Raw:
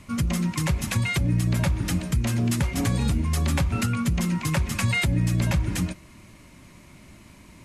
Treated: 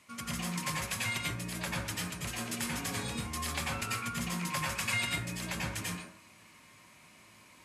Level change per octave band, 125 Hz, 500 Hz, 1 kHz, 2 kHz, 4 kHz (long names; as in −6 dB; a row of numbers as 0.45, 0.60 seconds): −17.0, −9.0, −3.5, −4.5, −3.0 decibels